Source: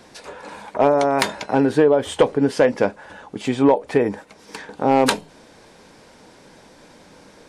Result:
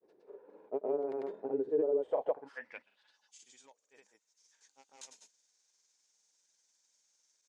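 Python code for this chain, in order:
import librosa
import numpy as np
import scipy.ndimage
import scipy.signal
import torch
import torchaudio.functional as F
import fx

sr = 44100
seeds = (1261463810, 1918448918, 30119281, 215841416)

y = fx.filter_sweep_bandpass(x, sr, from_hz=400.0, to_hz=6600.0, start_s=2.0, end_s=3.32, q=5.3)
y = fx.granulator(y, sr, seeds[0], grain_ms=100.0, per_s=20.0, spray_ms=100.0, spread_st=0)
y = F.gain(torch.from_numpy(y), -8.0).numpy()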